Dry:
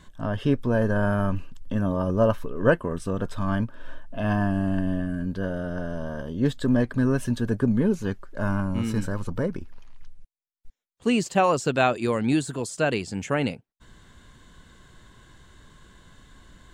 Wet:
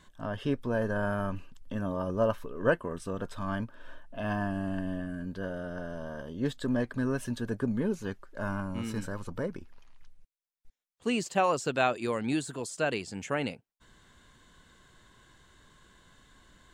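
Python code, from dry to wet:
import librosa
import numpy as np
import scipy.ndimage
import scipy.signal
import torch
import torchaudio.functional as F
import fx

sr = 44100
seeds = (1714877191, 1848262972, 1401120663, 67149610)

y = fx.low_shelf(x, sr, hz=260.0, db=-6.5)
y = F.gain(torch.from_numpy(y), -4.5).numpy()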